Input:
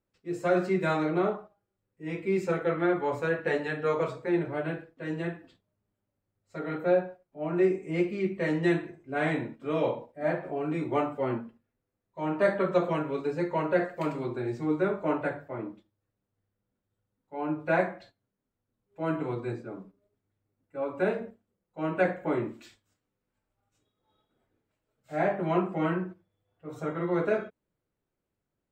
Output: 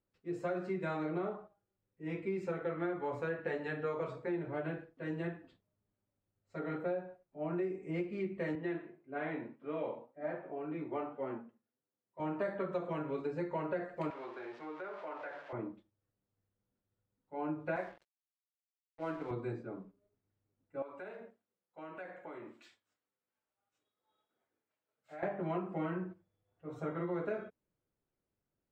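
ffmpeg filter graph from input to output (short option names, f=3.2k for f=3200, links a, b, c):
-filter_complex "[0:a]asettb=1/sr,asplit=3[a][b][c];[a]atrim=end=8.554[d];[b]atrim=start=8.55:end=12.2,asetpts=PTS-STARTPTS,afade=t=in:d=0.004:c=qsin,afade=t=out:st=3.646:d=0.004:c=qsin,flanger=delay=6.2:depth=3.6:regen=82:speed=1.8:shape=triangular,highpass=190,lowpass=3.2k[e];[c]atrim=start=12.196[f];[d][e]acrossfade=d=0.004:c1=hsin:c2=qsin[g];[g][f]acrossfade=d=0.004:c1=qsin:c2=hsin,asettb=1/sr,asplit=3[h][i][j];[h]atrim=end=14.104[k];[i]atrim=start=14.1:end=15.53,asetpts=PTS-STARTPTS,afade=t=in:d=0.004:c=qsin,afade=t=out:st=1.426:d=0.004:c=qsin,aeval=exprs='val(0)+0.5*0.01*sgn(val(0))':c=same,highpass=650,lowpass=3.5k,acompressor=threshold=-36dB:ratio=4:attack=3.2:release=140:knee=1:detection=peak[l];[j]atrim=start=15.526[m];[k][l]acrossfade=d=0.004:c1=hsin:c2=qsin[n];[n][m]acrossfade=d=0.004:c1=qsin:c2=hsin,asettb=1/sr,asplit=3[o][p][q];[o]atrim=end=17.764[r];[p]atrim=start=17.76:end=19.31,asetpts=PTS-STARTPTS,afade=t=in:d=0.004:c=qsin,afade=t=out:st=1.546:d=0.004:c=qsin,highpass=f=370:p=1,aeval=exprs='sgn(val(0))*max(abs(val(0))-0.00376,0)':c=same[s];[q]atrim=start=19.306[t];[r][s]acrossfade=d=0.004:c1=hsin:c2=qsin[u];[u][t]acrossfade=d=0.004:c1=qsin:c2=hsin,asettb=1/sr,asplit=3[v][w][x];[v]atrim=end=20.824[y];[w]atrim=start=20.82:end=25.23,asetpts=PTS-STARTPTS,afade=t=in:d=0.004:c=qsin,afade=t=out:st=4.406:d=0.004:c=qsin,highpass=f=770:p=1,acompressor=threshold=-40dB:ratio=4:attack=3.2:release=140:knee=1:detection=peak[z];[x]atrim=start=25.226[aa];[y][z]acrossfade=d=0.004:c1=hsin:c2=qsin[ab];[ab][aa]acrossfade=d=0.004:c1=qsin:c2=hsin,lowpass=f=2.8k:p=1,acompressor=threshold=-29dB:ratio=6,volume=-4dB"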